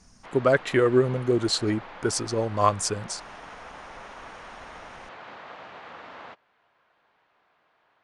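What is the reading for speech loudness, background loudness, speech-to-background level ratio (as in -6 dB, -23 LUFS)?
-24.5 LUFS, -43.0 LUFS, 18.5 dB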